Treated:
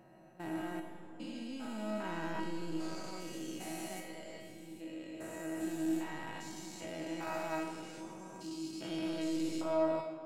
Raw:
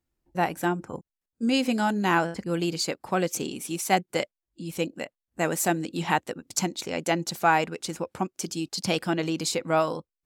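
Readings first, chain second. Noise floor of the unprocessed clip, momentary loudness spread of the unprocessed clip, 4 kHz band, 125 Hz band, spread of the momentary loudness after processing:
below −85 dBFS, 10 LU, −16.0 dB, −16.0 dB, 12 LU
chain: spectrum averaged block by block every 400 ms
in parallel at −11.5 dB: wave folding −30 dBFS
on the sum: tuned comb filter 320 Hz, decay 0.54 s, mix 90%
comb and all-pass reverb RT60 2.6 s, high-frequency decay 0.7×, pre-delay 25 ms, DRR 6.5 dB
level +3.5 dB

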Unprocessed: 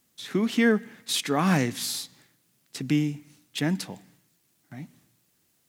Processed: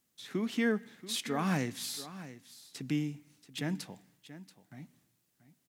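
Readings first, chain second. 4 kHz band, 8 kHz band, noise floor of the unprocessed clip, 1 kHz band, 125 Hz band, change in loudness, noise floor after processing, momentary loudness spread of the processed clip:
−8.5 dB, −8.5 dB, −69 dBFS, −8.5 dB, −8.5 dB, −8.5 dB, −77 dBFS, 21 LU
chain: single-tap delay 682 ms −15 dB
level −8.5 dB

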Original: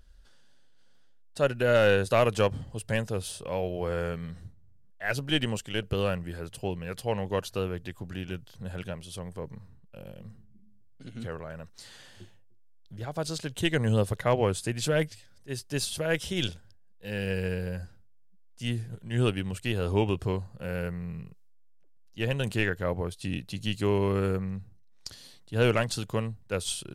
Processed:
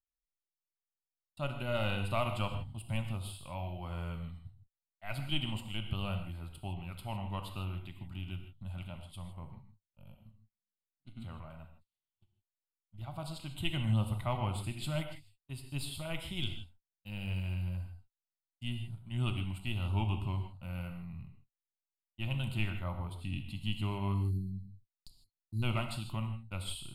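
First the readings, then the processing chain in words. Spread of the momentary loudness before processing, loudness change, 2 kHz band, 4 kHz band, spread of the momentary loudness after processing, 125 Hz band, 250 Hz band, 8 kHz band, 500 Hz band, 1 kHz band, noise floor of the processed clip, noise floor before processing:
19 LU, −8.0 dB, −11.0 dB, −6.5 dB, 15 LU, −4.0 dB, −8.5 dB, −12.5 dB, −16.0 dB, −7.0 dB, below −85 dBFS, −54 dBFS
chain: time-frequency box erased 0:24.14–0:25.63, 440–3,900 Hz
noise gate −42 dBFS, range −43 dB
low-shelf EQ 61 Hz +8.5 dB
phaser with its sweep stopped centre 1,700 Hz, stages 6
reverb whose tail is shaped and stops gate 180 ms flat, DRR 5.5 dB
level −6.5 dB

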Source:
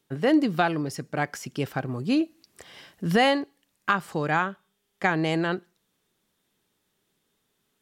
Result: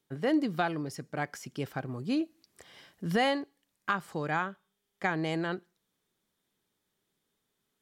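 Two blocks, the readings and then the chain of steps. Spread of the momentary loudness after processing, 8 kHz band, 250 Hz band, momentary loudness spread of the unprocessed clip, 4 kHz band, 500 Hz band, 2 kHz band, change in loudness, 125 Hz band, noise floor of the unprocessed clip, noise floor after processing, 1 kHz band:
11 LU, −6.5 dB, −6.5 dB, 11 LU, −7.0 dB, −6.5 dB, −6.5 dB, −6.5 dB, −6.5 dB, −75 dBFS, −82 dBFS, −6.5 dB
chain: notch filter 2,700 Hz, Q 18
level −6.5 dB

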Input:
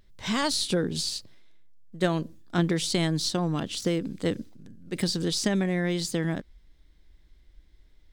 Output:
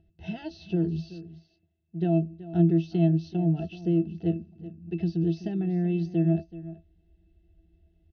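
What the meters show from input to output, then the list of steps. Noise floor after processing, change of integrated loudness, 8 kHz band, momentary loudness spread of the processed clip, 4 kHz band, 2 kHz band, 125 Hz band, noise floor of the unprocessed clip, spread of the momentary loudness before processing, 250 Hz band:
−69 dBFS, +0.5 dB, below −30 dB, 18 LU, below −20 dB, −15.0 dB, +4.0 dB, −58 dBFS, 7 LU, +2.5 dB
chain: Chebyshev low-pass filter 6,300 Hz, order 10
low-shelf EQ 180 Hz −3.5 dB
in parallel at +1 dB: downward compressor, threshold −38 dBFS, peak gain reduction 17 dB
on the sum: Butterworth band-reject 1,200 Hz, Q 1.5
resonances in every octave E, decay 0.14 s
on a send: single-tap delay 378 ms −16 dB
on the sum: level +7 dB

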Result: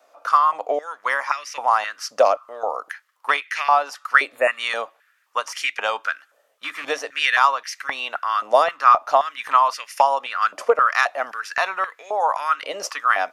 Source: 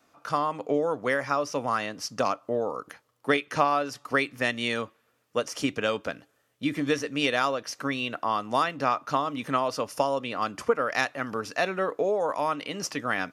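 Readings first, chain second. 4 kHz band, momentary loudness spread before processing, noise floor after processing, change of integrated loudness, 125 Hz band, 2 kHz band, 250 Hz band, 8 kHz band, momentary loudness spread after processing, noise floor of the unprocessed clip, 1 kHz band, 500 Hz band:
+4.5 dB, 7 LU, −63 dBFS, +7.0 dB, below −20 dB, +8.0 dB, −15.5 dB, +3.5 dB, 12 LU, −70 dBFS, +9.5 dB, +3.5 dB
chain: loose part that buzzes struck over −31 dBFS, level −27 dBFS
healed spectral selection 0:04.35–0:04.57, 2,900–6,700 Hz before
high-pass on a step sequencer 3.8 Hz 590–2,000 Hz
level +3 dB

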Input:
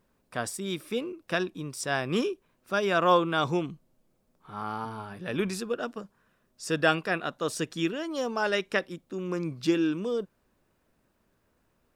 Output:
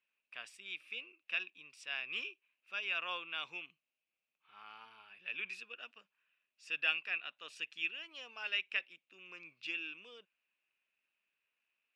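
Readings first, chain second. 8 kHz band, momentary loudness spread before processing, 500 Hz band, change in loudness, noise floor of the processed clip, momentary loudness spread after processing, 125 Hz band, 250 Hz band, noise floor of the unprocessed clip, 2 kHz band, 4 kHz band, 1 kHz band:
below −20 dB, 13 LU, −28.0 dB, −10.0 dB, below −85 dBFS, 19 LU, below −35 dB, −32.5 dB, −72 dBFS, −6.0 dB, −5.5 dB, −20.0 dB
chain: resonant band-pass 2,600 Hz, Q 8.3
level +4.5 dB

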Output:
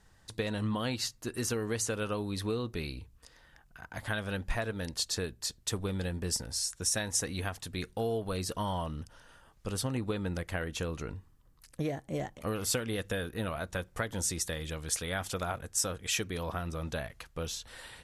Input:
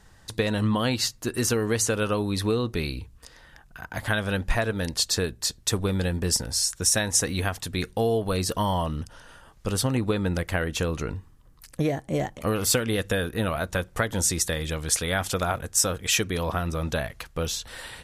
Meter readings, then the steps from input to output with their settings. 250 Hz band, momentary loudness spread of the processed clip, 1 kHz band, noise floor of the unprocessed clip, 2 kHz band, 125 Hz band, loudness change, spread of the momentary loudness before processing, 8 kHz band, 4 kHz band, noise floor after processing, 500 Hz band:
−8.5 dB, 9 LU, −8.5 dB, −54 dBFS, −8.5 dB, −8.5 dB, −8.5 dB, 9 LU, −8.5 dB, −8.5 dB, −63 dBFS, −8.5 dB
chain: level −8.5 dB
MP2 96 kbit/s 48,000 Hz

